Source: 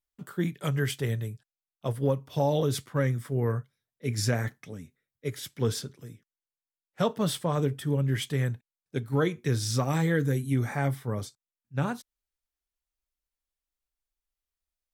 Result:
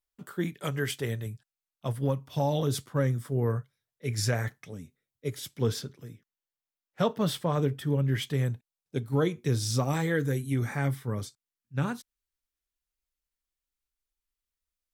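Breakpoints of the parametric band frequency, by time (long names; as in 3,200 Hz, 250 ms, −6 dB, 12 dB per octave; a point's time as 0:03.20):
parametric band −5.5 dB 0.84 octaves
140 Hz
from 0:01.26 440 Hz
from 0:02.67 2,100 Hz
from 0:03.57 250 Hz
from 0:04.73 1,700 Hz
from 0:05.66 8,800 Hz
from 0:08.34 1,700 Hz
from 0:09.94 190 Hz
from 0:10.62 690 Hz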